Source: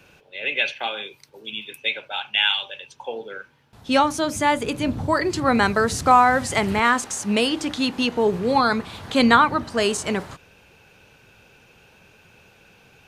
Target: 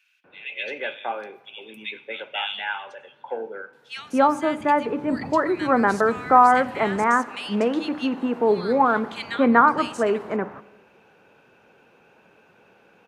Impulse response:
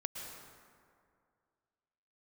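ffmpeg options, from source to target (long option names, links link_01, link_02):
-filter_complex "[0:a]acrossover=split=180 2300:gain=0.1 1 0.178[link_01][link_02][link_03];[link_01][link_02][link_03]amix=inputs=3:normalize=0,acrossover=split=2200[link_04][link_05];[link_04]adelay=240[link_06];[link_06][link_05]amix=inputs=2:normalize=0,asplit=2[link_07][link_08];[1:a]atrim=start_sample=2205,asetrate=79380,aresample=44100[link_09];[link_08][link_09]afir=irnorm=-1:irlink=0,volume=-10.5dB[link_10];[link_07][link_10]amix=inputs=2:normalize=0"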